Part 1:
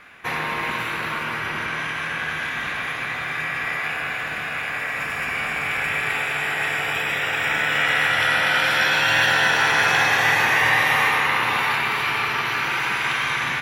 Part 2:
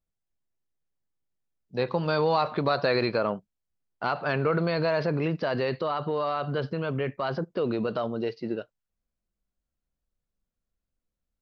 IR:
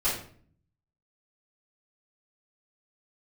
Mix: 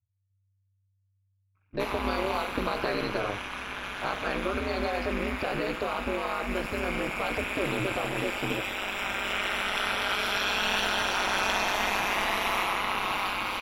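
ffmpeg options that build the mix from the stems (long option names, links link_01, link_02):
-filter_complex "[0:a]equalizer=frequency=1800:width=4.1:gain=-13.5,adelay=1550,volume=-3dB[link_01];[1:a]acompressor=threshold=-26dB:ratio=6,volume=1.5dB,asplit=2[link_02][link_03];[link_03]volume=-21.5dB[link_04];[2:a]atrim=start_sample=2205[link_05];[link_04][link_05]afir=irnorm=-1:irlink=0[link_06];[link_01][link_02][link_06]amix=inputs=3:normalize=0,anlmdn=0.1,aeval=exprs='val(0)*sin(2*PI*97*n/s)':channel_layout=same"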